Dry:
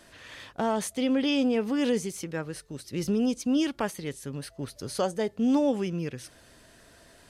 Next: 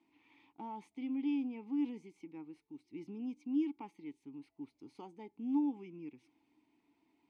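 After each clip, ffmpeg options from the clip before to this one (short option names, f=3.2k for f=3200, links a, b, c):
-filter_complex "[0:a]asplit=3[a][b][c];[a]bandpass=f=300:t=q:w=8,volume=0dB[d];[b]bandpass=f=870:t=q:w=8,volume=-6dB[e];[c]bandpass=f=2.24k:t=q:w=8,volume=-9dB[f];[d][e][f]amix=inputs=3:normalize=0,volume=-5dB"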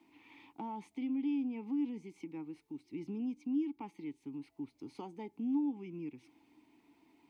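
-filter_complex "[0:a]acrossover=split=190[a][b];[b]acompressor=threshold=-53dB:ratio=2[c];[a][c]amix=inputs=2:normalize=0,volume=8dB"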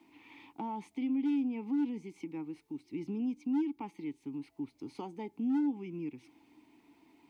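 -af "volume=30dB,asoftclip=hard,volume=-30dB,volume=3.5dB"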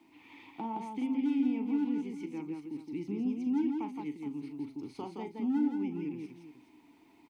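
-af "aecho=1:1:40|168|419:0.316|0.631|0.224"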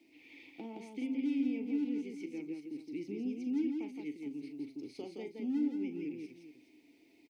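-af "firequalizer=gain_entry='entry(180,0);entry(280,6);entry(550,11);entry(970,-13);entry(2200,10);entry(3200,7);entry(4900,12);entry(7200,7)':delay=0.05:min_phase=1,volume=-9dB"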